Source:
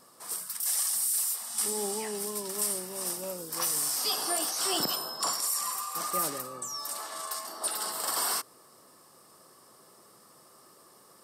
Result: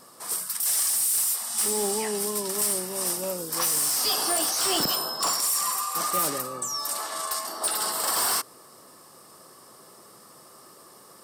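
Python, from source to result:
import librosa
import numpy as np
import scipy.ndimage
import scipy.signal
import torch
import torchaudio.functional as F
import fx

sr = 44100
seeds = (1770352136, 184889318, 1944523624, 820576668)

y = np.clip(10.0 ** (27.0 / 20.0) * x, -1.0, 1.0) / 10.0 ** (27.0 / 20.0)
y = y * librosa.db_to_amplitude(6.5)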